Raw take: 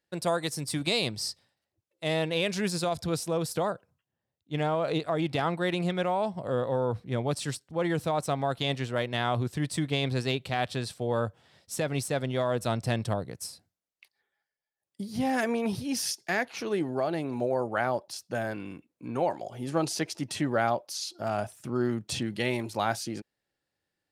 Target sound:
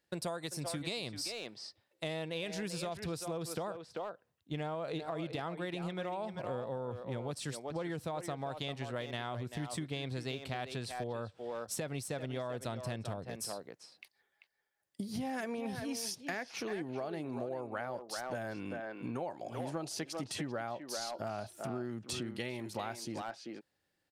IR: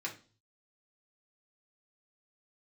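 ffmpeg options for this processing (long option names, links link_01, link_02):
-filter_complex "[0:a]asplit=2[link_01][link_02];[link_02]adelay=390,highpass=300,lowpass=3400,asoftclip=type=hard:threshold=-21.5dB,volume=-8dB[link_03];[link_01][link_03]amix=inputs=2:normalize=0,acompressor=threshold=-39dB:ratio=6,volume=2.5dB"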